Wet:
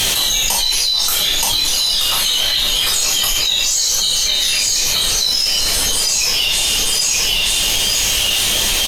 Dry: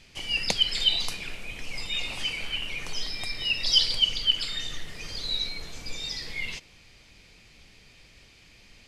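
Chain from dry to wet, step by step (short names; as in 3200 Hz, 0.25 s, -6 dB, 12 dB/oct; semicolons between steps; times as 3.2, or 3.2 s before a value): fifteen-band EQ 160 Hz -5 dB, 4000 Hz -3 dB, 10000 Hz +10 dB; on a send: feedback echo 0.926 s, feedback 18%, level -8 dB; on the sum: reverb removal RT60 1 s; low shelf 450 Hz -11 dB; formant shift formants +5 st; in parallel at -10 dB: hard clip -32 dBFS, distortion -3 dB; on the sum: two-slope reverb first 0.48 s, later 4 s, from -19 dB, DRR -6 dB; fast leveller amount 100%; gain -2.5 dB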